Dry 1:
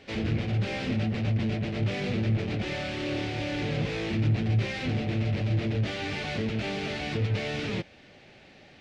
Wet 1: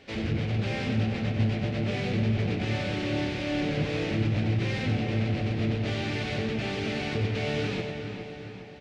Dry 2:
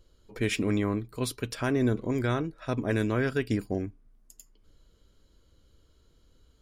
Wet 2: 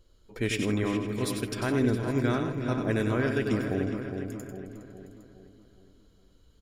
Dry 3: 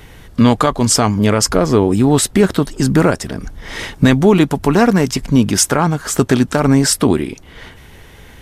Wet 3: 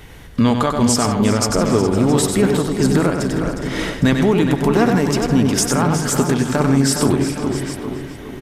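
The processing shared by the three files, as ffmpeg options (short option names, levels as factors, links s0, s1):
-filter_complex "[0:a]asplit=2[s0][s1];[s1]aecho=0:1:95|102|161|360|668|810:0.447|0.133|0.133|0.2|0.119|0.119[s2];[s0][s2]amix=inputs=2:normalize=0,alimiter=limit=0.531:level=0:latency=1:release=354,asplit=2[s3][s4];[s4]adelay=413,lowpass=f=2500:p=1,volume=0.447,asplit=2[s5][s6];[s6]adelay=413,lowpass=f=2500:p=1,volume=0.5,asplit=2[s7][s8];[s8]adelay=413,lowpass=f=2500:p=1,volume=0.5,asplit=2[s9][s10];[s10]adelay=413,lowpass=f=2500:p=1,volume=0.5,asplit=2[s11][s12];[s12]adelay=413,lowpass=f=2500:p=1,volume=0.5,asplit=2[s13][s14];[s14]adelay=413,lowpass=f=2500:p=1,volume=0.5[s15];[s5][s7][s9][s11][s13][s15]amix=inputs=6:normalize=0[s16];[s3][s16]amix=inputs=2:normalize=0,volume=0.891"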